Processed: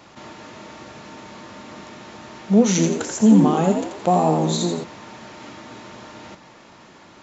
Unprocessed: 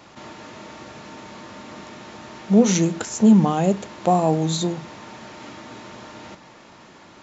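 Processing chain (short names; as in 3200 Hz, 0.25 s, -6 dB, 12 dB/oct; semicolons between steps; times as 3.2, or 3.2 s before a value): 2.69–4.84 frequency-shifting echo 85 ms, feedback 40%, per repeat +68 Hz, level -6 dB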